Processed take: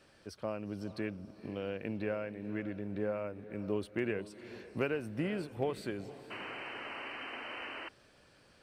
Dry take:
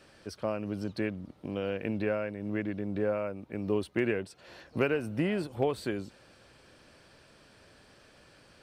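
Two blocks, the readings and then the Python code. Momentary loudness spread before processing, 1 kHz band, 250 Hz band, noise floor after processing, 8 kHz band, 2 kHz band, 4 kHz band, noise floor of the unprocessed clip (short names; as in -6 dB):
9 LU, -3.0 dB, -5.0 dB, -64 dBFS, -5.5 dB, -3.0 dB, -0.5 dB, -59 dBFS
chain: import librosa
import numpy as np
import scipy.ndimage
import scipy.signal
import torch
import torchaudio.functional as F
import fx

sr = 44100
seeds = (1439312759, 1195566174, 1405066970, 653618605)

y = fx.echo_diffused(x, sr, ms=475, feedback_pct=41, wet_db=-14.5)
y = fx.spec_paint(y, sr, seeds[0], shape='noise', start_s=6.3, length_s=1.59, low_hz=230.0, high_hz=3100.0, level_db=-38.0)
y = y * librosa.db_to_amplitude(-5.5)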